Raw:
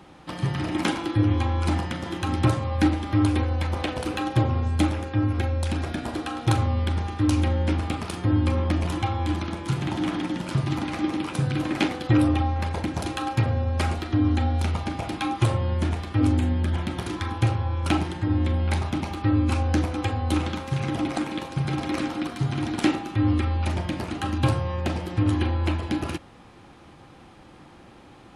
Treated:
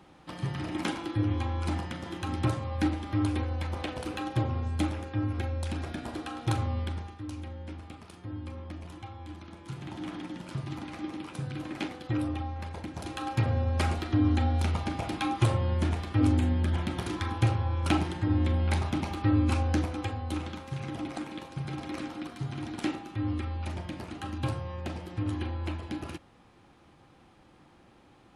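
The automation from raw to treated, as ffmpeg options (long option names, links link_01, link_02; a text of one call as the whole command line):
ffmpeg -i in.wav -af "volume=7.5dB,afade=type=out:start_time=6.78:duration=0.44:silence=0.298538,afade=type=in:start_time=9.38:duration=0.76:silence=0.473151,afade=type=in:start_time=12.94:duration=0.62:silence=0.398107,afade=type=out:start_time=19.5:duration=0.79:silence=0.473151" out.wav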